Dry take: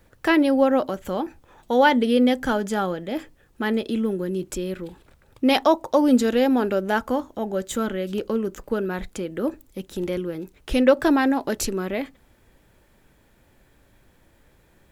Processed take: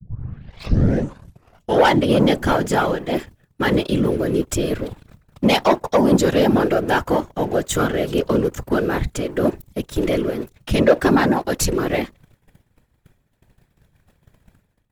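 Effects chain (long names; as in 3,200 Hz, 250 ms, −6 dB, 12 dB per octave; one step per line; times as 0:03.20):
turntable start at the beginning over 1.91 s
low shelf with overshoot 110 Hz +7 dB, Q 3
leveller curve on the samples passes 2
automatic gain control gain up to 8 dB
downward expander −40 dBFS
random phases in short frames
level −6 dB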